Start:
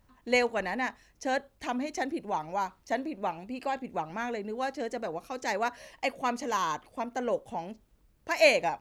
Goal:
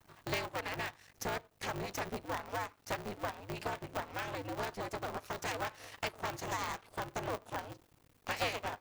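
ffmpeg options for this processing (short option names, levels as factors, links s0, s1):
-af "aeval=exprs='max(val(0),0)':c=same,lowshelf=f=140:g=-11.5,bandreject=f=470:w=12,acompressor=threshold=0.00501:ratio=3,aeval=exprs='val(0)*sgn(sin(2*PI*100*n/s))':c=same,volume=2.66"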